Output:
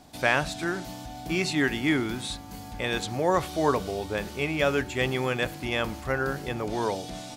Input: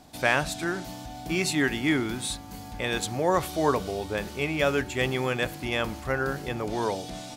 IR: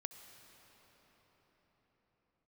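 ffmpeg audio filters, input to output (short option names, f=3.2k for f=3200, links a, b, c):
-filter_complex "[0:a]acrossover=split=6600[a][b];[b]acompressor=threshold=-45dB:ratio=4:attack=1:release=60[c];[a][c]amix=inputs=2:normalize=0"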